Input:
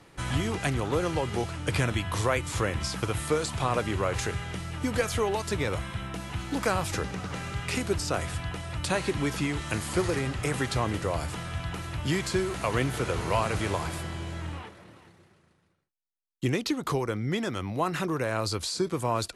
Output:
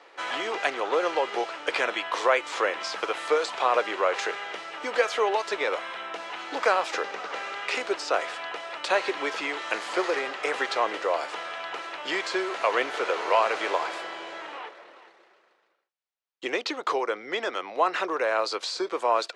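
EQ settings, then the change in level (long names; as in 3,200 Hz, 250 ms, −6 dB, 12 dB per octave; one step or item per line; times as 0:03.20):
high-pass filter 450 Hz 24 dB per octave
high-frequency loss of the air 140 metres
+6.5 dB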